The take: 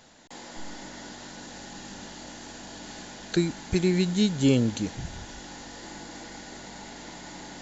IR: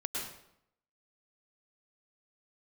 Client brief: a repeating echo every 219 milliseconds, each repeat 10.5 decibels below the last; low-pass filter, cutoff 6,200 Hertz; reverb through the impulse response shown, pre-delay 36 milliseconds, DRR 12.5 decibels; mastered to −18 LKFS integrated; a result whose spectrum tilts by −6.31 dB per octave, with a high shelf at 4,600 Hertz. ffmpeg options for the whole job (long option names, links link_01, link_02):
-filter_complex "[0:a]lowpass=6200,highshelf=frequency=4600:gain=-8,aecho=1:1:219|438|657:0.299|0.0896|0.0269,asplit=2[link_01][link_02];[1:a]atrim=start_sample=2205,adelay=36[link_03];[link_02][link_03]afir=irnorm=-1:irlink=0,volume=-16dB[link_04];[link_01][link_04]amix=inputs=2:normalize=0,volume=8dB"